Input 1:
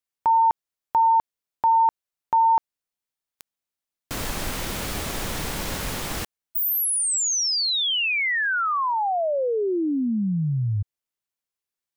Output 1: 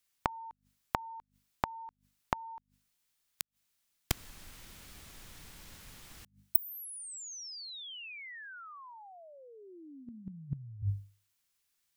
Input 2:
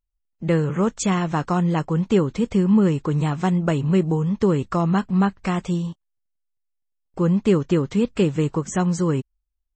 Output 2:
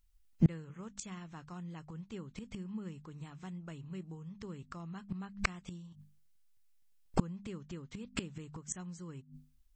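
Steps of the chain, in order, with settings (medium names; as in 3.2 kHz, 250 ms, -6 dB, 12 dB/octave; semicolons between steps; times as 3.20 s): hum notches 50/100/150/200/250 Hz; inverted gate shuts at -21 dBFS, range -32 dB; peaking EQ 540 Hz -9 dB 2.3 oct; trim +11 dB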